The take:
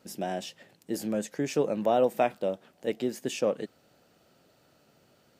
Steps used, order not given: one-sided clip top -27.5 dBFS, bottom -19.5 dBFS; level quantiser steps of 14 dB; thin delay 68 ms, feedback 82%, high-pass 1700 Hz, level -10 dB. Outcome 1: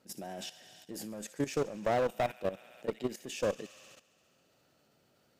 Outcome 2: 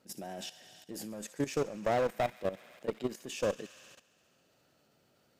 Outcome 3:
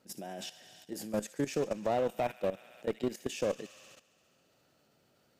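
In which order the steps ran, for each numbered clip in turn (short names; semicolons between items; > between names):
thin delay > one-sided clip > level quantiser; one-sided clip > thin delay > level quantiser; thin delay > level quantiser > one-sided clip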